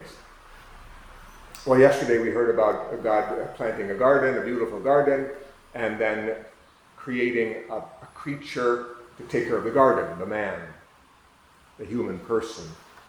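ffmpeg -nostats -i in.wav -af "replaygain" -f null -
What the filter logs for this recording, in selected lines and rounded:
track_gain = +4.6 dB
track_peak = 0.441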